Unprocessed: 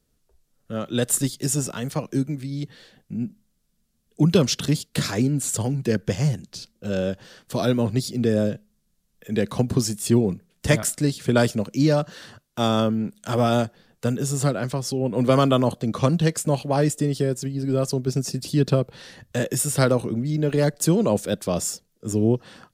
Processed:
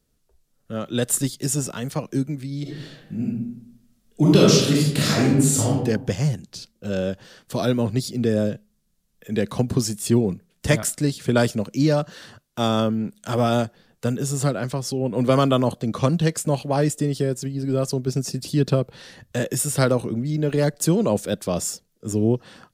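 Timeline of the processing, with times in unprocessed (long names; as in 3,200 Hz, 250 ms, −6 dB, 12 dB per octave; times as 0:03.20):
0:02.62–0:05.72: thrown reverb, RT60 0.82 s, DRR −5 dB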